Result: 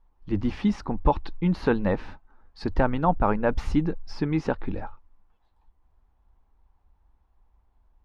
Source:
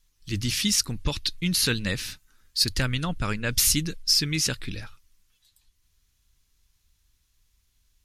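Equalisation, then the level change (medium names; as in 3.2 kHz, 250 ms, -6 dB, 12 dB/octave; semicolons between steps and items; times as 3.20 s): resonant low-pass 840 Hz, resonance Q 3.9; peaking EQ 120 Hz -12.5 dB 0.65 oct; +6.5 dB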